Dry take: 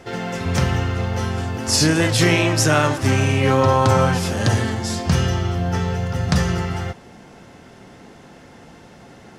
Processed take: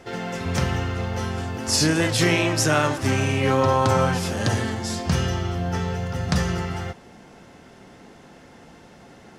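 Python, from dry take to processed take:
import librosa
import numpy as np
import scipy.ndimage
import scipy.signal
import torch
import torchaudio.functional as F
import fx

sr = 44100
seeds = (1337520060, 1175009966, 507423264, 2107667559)

y = fx.peak_eq(x, sr, hz=110.0, db=-3.0, octaves=0.77)
y = F.gain(torch.from_numpy(y), -3.0).numpy()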